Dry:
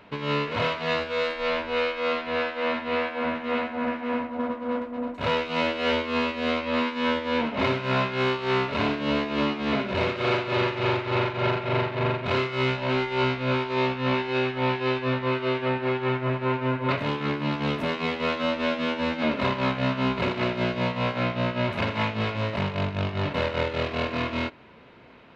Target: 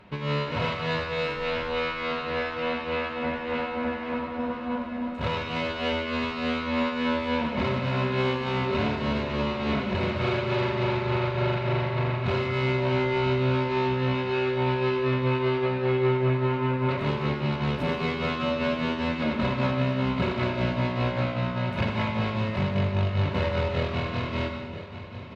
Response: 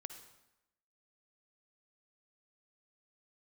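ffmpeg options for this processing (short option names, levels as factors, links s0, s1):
-filter_complex "[0:a]equalizer=f=67:t=o:w=2.1:g=13,aecho=1:1:5.4:0.36,alimiter=limit=0.211:level=0:latency=1:release=140,aecho=1:1:986|1972|2958|3944|4930|5916:0.2|0.118|0.0695|0.041|0.0242|0.0143[s0];[1:a]atrim=start_sample=2205,asetrate=29988,aresample=44100[s1];[s0][s1]afir=irnorm=-1:irlink=0"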